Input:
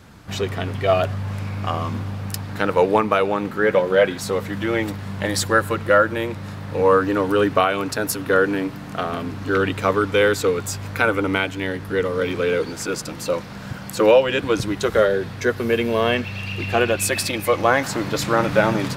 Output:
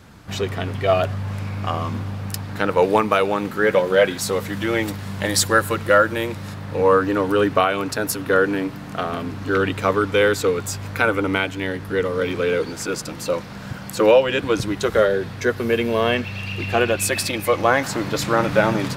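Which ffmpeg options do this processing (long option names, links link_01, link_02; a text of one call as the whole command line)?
ffmpeg -i in.wav -filter_complex "[0:a]asettb=1/sr,asplit=3[link_01][link_02][link_03];[link_01]atrim=end=2.824[link_04];[link_02]atrim=start=2.82:end=6.54,asetpts=PTS-STARTPTS,afade=type=in:duration=0.004:curve=qsin,afade=type=out:start_time=3.716:duration=0.004:curve=qsin,highshelf=frequency=3900:gain=7[link_05];[link_03]atrim=start=6.536[link_06];[link_04][link_05]acrossfade=duration=0.004:curve1=hsin:curve2=qsin[link_07];[link_07][link_06]acrossfade=duration=0.004:curve1=qsin:curve2=hsin" out.wav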